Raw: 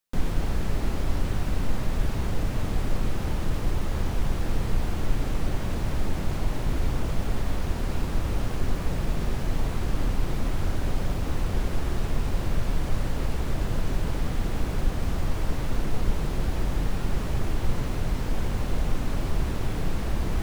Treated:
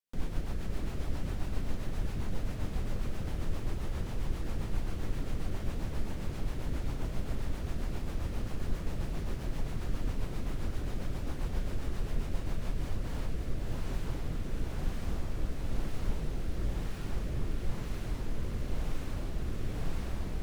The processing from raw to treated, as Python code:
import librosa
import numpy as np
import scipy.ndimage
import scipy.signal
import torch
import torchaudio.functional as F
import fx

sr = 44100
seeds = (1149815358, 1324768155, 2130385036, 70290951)

y = fx.rotary_switch(x, sr, hz=7.5, then_hz=1.0, switch_at_s=12.39)
y = y + 10.0 ** (-6.0 / 20.0) * np.pad(y, (int(570 * sr / 1000.0), 0))[:len(y)]
y = y * librosa.db_to_amplitude(-7.5)